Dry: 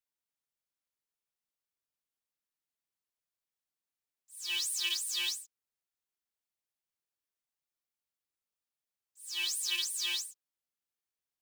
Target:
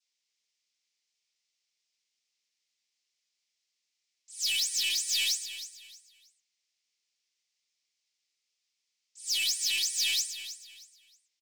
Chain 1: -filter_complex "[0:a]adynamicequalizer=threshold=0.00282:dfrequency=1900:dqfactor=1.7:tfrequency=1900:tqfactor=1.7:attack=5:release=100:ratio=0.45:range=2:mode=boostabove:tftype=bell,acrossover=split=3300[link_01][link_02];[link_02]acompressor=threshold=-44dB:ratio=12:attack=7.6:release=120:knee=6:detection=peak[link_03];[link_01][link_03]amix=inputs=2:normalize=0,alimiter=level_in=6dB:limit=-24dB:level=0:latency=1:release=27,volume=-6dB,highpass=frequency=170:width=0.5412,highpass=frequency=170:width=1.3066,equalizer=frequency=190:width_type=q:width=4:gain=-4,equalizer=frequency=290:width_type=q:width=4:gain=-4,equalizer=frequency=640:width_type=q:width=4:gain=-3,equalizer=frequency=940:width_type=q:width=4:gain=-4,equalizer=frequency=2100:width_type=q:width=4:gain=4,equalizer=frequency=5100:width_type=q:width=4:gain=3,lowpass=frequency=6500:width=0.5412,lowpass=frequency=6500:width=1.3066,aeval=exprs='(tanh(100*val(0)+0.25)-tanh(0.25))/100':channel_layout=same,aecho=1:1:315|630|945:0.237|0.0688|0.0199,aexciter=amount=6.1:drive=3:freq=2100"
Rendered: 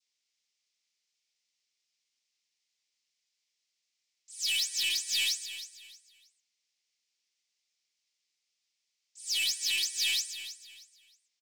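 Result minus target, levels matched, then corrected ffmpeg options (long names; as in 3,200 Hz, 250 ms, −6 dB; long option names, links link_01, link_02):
downward compressor: peak gain reduction +7 dB
-filter_complex "[0:a]adynamicequalizer=threshold=0.00282:dfrequency=1900:dqfactor=1.7:tfrequency=1900:tqfactor=1.7:attack=5:release=100:ratio=0.45:range=2:mode=boostabove:tftype=bell,acrossover=split=3300[link_01][link_02];[link_02]acompressor=threshold=-36.5dB:ratio=12:attack=7.6:release=120:knee=6:detection=peak[link_03];[link_01][link_03]amix=inputs=2:normalize=0,alimiter=level_in=6dB:limit=-24dB:level=0:latency=1:release=27,volume=-6dB,highpass=frequency=170:width=0.5412,highpass=frequency=170:width=1.3066,equalizer=frequency=190:width_type=q:width=4:gain=-4,equalizer=frequency=290:width_type=q:width=4:gain=-4,equalizer=frequency=640:width_type=q:width=4:gain=-3,equalizer=frequency=940:width_type=q:width=4:gain=-4,equalizer=frequency=2100:width_type=q:width=4:gain=4,equalizer=frequency=5100:width_type=q:width=4:gain=3,lowpass=frequency=6500:width=0.5412,lowpass=frequency=6500:width=1.3066,aeval=exprs='(tanh(100*val(0)+0.25)-tanh(0.25))/100':channel_layout=same,aecho=1:1:315|630|945:0.237|0.0688|0.0199,aexciter=amount=6.1:drive=3:freq=2100"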